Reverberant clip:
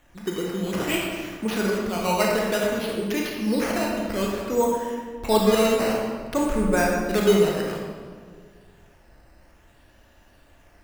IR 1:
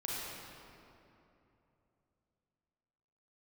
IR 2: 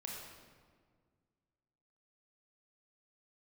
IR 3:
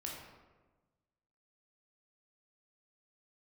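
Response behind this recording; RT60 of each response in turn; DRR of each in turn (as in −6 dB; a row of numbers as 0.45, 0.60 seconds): 2; 3.0, 1.8, 1.3 seconds; −6.0, −2.0, −2.5 decibels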